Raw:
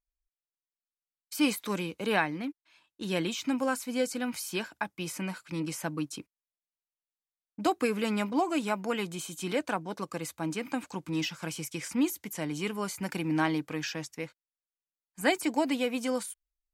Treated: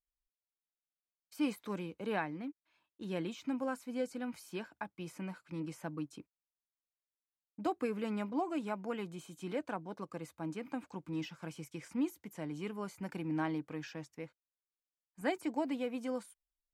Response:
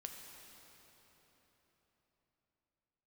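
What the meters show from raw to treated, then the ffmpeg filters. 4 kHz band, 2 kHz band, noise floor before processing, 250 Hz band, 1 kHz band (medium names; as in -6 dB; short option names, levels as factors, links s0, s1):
-14.5 dB, -11.5 dB, under -85 dBFS, -6.5 dB, -8.0 dB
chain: -af "highshelf=f=2200:g=-11.5,volume=0.473"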